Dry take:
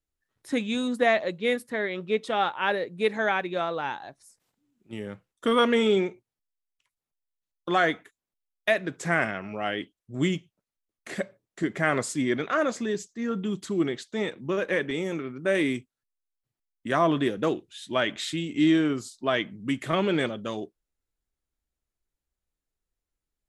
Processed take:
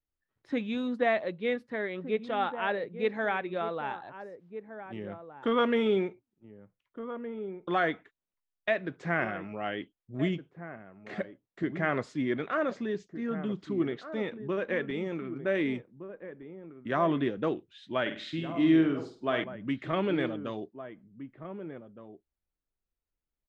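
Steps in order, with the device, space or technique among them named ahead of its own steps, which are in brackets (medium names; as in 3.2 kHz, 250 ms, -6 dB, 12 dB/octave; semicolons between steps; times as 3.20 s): shout across a valley (distance through air 240 m; echo from a far wall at 260 m, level -11 dB); 18.01–19.44 s: flutter echo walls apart 8.5 m, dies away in 0.38 s; trim -3.5 dB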